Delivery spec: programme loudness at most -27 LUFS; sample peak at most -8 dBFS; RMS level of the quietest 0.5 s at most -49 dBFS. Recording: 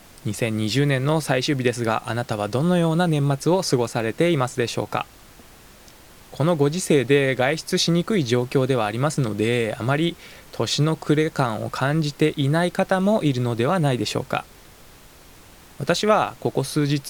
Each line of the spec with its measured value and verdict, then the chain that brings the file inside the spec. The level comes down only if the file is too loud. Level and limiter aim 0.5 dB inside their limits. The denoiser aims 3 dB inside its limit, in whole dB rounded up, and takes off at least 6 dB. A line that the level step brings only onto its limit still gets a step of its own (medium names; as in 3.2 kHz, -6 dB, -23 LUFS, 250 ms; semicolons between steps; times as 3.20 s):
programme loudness -22.0 LUFS: fail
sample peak -5.5 dBFS: fail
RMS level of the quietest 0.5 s -47 dBFS: fail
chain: trim -5.5 dB